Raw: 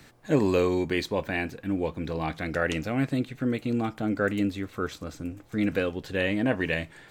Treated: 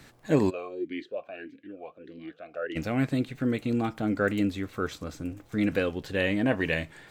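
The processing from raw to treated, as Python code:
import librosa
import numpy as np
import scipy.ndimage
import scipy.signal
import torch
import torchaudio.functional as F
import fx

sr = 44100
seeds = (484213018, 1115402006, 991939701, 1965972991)

y = fx.wow_flutter(x, sr, seeds[0], rate_hz=2.1, depth_cents=25.0)
y = fx.dmg_crackle(y, sr, seeds[1], per_s=64.0, level_db=-51.0)
y = fx.vowel_sweep(y, sr, vowels='a-i', hz=1.6, at=(0.49, 2.75), fade=0.02)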